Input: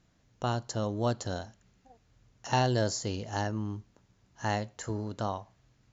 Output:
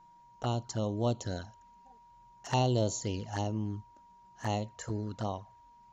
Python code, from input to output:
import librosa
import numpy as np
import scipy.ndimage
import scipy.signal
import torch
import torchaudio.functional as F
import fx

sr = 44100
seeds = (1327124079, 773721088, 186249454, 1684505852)

y = fx.env_flanger(x, sr, rest_ms=6.0, full_db=-28.0)
y = y + 10.0 ** (-56.0 / 20.0) * np.sin(2.0 * np.pi * 950.0 * np.arange(len(y)) / sr)